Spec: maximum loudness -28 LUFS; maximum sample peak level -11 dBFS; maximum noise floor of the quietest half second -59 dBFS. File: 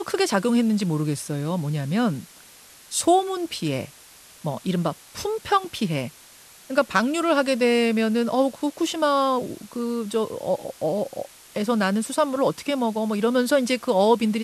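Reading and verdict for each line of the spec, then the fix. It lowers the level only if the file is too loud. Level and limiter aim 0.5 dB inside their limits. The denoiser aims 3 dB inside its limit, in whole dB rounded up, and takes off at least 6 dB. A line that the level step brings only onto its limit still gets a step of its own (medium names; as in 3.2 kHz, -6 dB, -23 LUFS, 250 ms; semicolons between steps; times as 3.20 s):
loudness -23.5 LUFS: fail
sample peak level -5.5 dBFS: fail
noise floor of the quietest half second -49 dBFS: fail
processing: noise reduction 8 dB, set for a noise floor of -49 dBFS; trim -5 dB; peak limiter -11.5 dBFS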